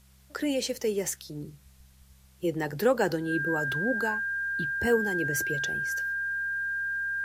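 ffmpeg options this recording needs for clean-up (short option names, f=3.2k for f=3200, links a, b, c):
-af "bandreject=f=65.5:t=h:w=4,bandreject=f=131:t=h:w=4,bandreject=f=196.5:t=h:w=4,bandreject=f=1.6k:w=30,agate=range=-21dB:threshold=-49dB"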